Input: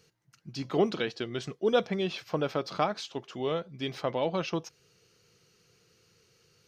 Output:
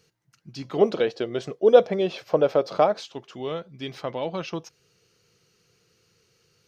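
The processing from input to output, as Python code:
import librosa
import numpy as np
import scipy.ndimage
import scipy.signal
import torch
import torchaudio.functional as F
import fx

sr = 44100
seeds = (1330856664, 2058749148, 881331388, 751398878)

y = fx.peak_eq(x, sr, hz=550.0, db=13.0, octaves=1.2, at=(0.81, 3.05))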